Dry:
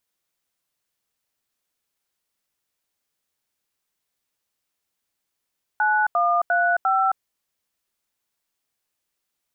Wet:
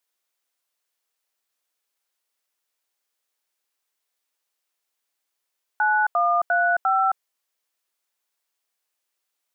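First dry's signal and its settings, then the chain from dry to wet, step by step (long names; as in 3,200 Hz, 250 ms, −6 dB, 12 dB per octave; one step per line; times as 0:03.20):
touch tones "9135", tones 267 ms, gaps 83 ms, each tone −19.5 dBFS
high-pass filter 420 Hz 12 dB per octave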